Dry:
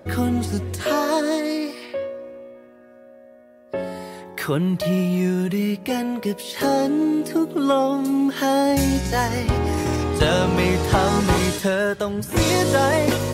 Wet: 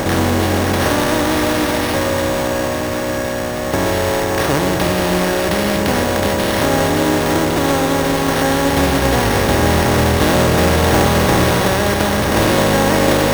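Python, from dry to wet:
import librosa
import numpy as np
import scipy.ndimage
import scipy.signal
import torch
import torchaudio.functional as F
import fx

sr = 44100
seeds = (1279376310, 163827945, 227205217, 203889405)

p1 = fx.bin_compress(x, sr, power=0.2)
p2 = p1 + fx.echo_split(p1, sr, split_hz=640.0, low_ms=122, high_ms=575, feedback_pct=52, wet_db=-6.5, dry=0)
p3 = np.repeat(p2[::6], 6)[:len(p2)]
y = F.gain(torch.from_numpy(p3), -4.5).numpy()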